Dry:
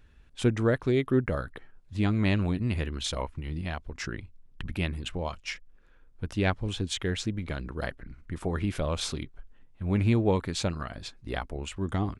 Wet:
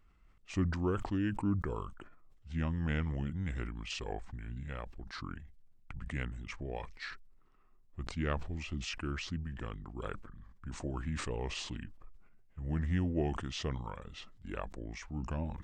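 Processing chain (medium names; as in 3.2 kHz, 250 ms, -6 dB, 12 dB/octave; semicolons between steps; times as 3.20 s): tape speed -22%; decay stretcher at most 60 dB/s; trim -8.5 dB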